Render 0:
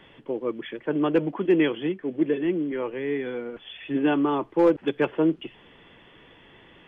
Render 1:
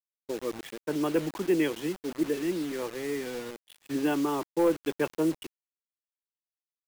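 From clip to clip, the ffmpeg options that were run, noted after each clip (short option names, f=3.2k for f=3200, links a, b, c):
-af "acrusher=bits=5:mix=0:aa=0.000001,agate=range=-33dB:threshold=-33dB:ratio=3:detection=peak,volume=-5dB"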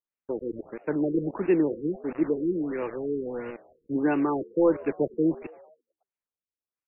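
-filter_complex "[0:a]asplit=6[a][b][c][d][e][f];[b]adelay=112,afreqshift=76,volume=-21dB[g];[c]adelay=224,afreqshift=152,volume=-25.3dB[h];[d]adelay=336,afreqshift=228,volume=-29.6dB[i];[e]adelay=448,afreqshift=304,volume=-33.9dB[j];[f]adelay=560,afreqshift=380,volume=-38.2dB[k];[a][g][h][i][j][k]amix=inputs=6:normalize=0,afftfilt=real='re*lt(b*sr/1024,470*pow(2900/470,0.5+0.5*sin(2*PI*1.5*pts/sr)))':imag='im*lt(b*sr/1024,470*pow(2900/470,0.5+0.5*sin(2*PI*1.5*pts/sr)))':win_size=1024:overlap=0.75,volume=3dB"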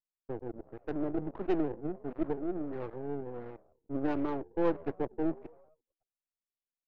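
-af "aeval=exprs='if(lt(val(0),0),0.251*val(0),val(0))':c=same,adynamicsmooth=sensitivity=1.5:basefreq=890,volume=-4dB"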